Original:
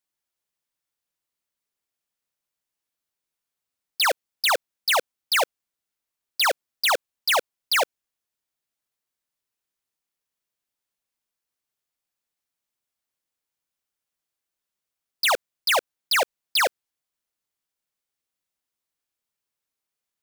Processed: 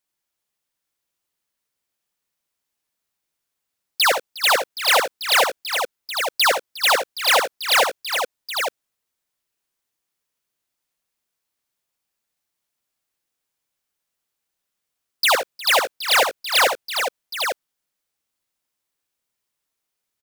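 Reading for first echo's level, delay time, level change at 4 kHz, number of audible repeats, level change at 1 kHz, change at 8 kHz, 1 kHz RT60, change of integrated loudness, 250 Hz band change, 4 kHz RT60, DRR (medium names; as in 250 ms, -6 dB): -7.5 dB, 63 ms, +5.5 dB, 5, +5.5 dB, +5.5 dB, no reverb, +4.0 dB, +5.5 dB, no reverb, no reverb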